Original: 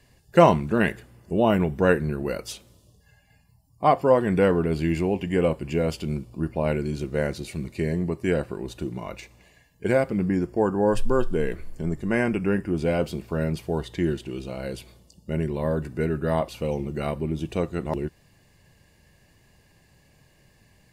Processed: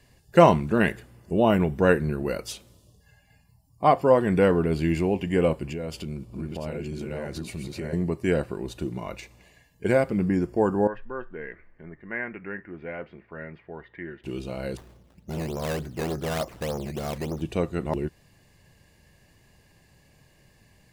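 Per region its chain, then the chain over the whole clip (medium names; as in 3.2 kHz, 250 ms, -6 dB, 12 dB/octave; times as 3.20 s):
5.65–7.93 s: chunks repeated in reverse 635 ms, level -2.5 dB + compression 4:1, threshold -30 dBFS + tape noise reduction on one side only decoder only
10.87–14.24 s: four-pole ladder low-pass 2.1 kHz, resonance 65% + bass shelf 230 Hz -9 dB
14.77–17.42 s: treble shelf 3.7 kHz -11.5 dB + decimation with a swept rate 14× 3.4 Hz + transformer saturation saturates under 710 Hz
whole clip: none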